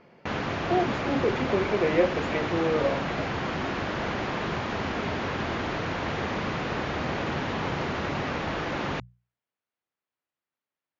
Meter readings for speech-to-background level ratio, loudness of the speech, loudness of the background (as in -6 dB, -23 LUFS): 2.5 dB, -27.5 LUFS, -30.0 LUFS